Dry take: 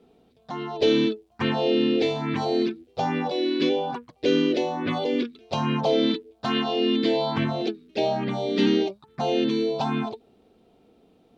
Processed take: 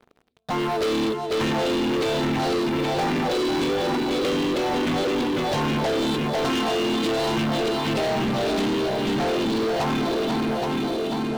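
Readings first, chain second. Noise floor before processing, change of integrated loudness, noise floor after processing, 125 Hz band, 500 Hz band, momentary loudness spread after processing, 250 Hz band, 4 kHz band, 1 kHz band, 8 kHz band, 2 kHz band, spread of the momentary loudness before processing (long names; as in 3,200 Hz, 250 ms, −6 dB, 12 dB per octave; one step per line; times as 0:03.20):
−61 dBFS, +1.5 dB, −29 dBFS, +3.0 dB, +1.0 dB, 2 LU, +1.0 dB, +2.5 dB, +4.0 dB, can't be measured, +5.0 dB, 8 LU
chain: feedback echo with a long and a short gap by turns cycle 822 ms, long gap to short 1.5 to 1, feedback 49%, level −8 dB
downward compressor 4 to 1, threshold −25 dBFS, peak gain reduction 8 dB
leveller curve on the samples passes 5
level −5.5 dB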